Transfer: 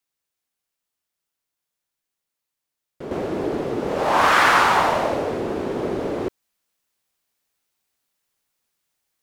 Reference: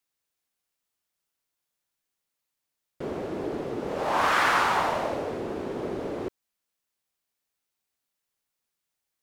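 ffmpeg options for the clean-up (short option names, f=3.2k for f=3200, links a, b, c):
-af "asetnsamples=n=441:p=0,asendcmd='3.11 volume volume -7dB',volume=0dB"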